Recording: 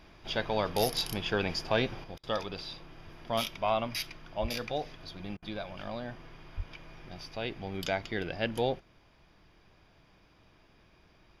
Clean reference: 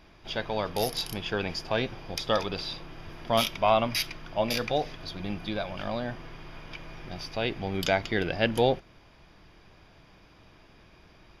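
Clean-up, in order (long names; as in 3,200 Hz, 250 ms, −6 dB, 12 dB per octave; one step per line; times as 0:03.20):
0:04.41–0:04.53: high-pass filter 140 Hz 24 dB per octave
0:06.56–0:06.68: high-pass filter 140 Hz 24 dB per octave
repair the gap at 0:02.18/0:05.37, 53 ms
0:02.04: level correction +6.5 dB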